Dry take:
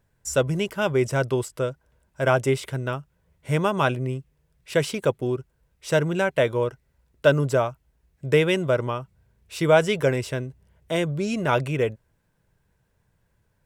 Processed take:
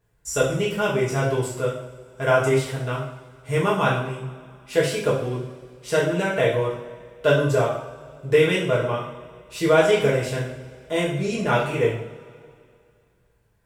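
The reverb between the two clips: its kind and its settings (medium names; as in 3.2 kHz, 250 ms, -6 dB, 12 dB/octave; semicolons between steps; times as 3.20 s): two-slope reverb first 0.57 s, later 2.4 s, from -19 dB, DRR -6.5 dB; trim -5 dB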